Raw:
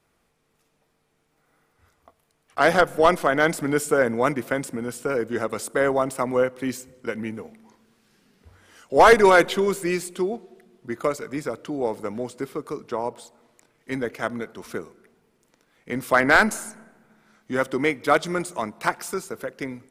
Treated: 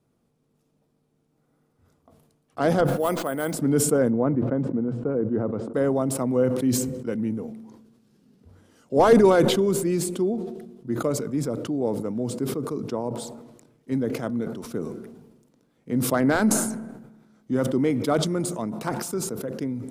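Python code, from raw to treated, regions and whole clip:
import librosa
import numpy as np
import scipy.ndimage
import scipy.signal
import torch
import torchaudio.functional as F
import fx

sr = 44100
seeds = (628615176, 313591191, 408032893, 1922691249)

y = fx.chain(x, sr, fx.low_shelf(hz=460.0, db=-10.5),
    fx.resample_bad(factor=4, down='filtered', up='hold'), at=(2.87, 3.54))
y = fx.chain(y, sr, fx.lowpass(hz=1300.0, slope=12),
    fx.hum_notches(base_hz=60, count=2), at=(4.1, 5.74))
y = fx.graphic_eq(y, sr, hz=(125, 250, 500, 2000), db=(12, 10, 4, -7))
y = fx.sustainer(y, sr, db_per_s=50.0)
y = y * librosa.db_to_amplitude(-8.0)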